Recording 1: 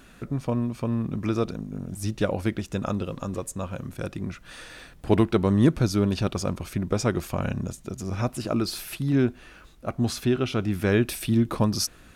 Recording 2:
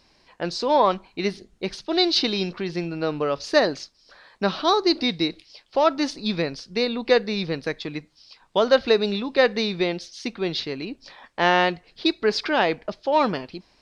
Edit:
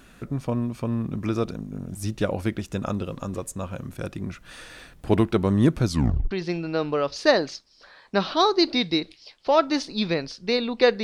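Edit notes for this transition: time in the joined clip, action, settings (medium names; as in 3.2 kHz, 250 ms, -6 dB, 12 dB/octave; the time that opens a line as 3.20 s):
recording 1
5.88 s: tape stop 0.43 s
6.31 s: go over to recording 2 from 2.59 s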